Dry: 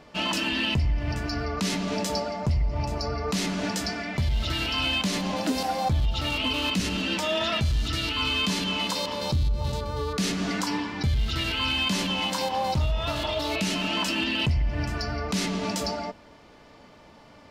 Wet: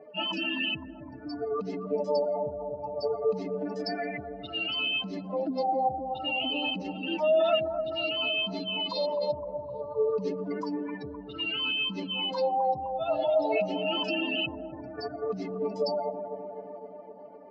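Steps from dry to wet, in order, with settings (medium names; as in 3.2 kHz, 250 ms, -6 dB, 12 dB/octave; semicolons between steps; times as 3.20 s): spectral contrast enhancement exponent 2.7; cabinet simulation 370–5900 Hz, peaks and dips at 420 Hz +9 dB, 650 Hz +5 dB, 1 kHz -6 dB, 3.5 kHz -8 dB; bucket-brigade echo 256 ms, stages 2048, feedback 69%, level -8 dB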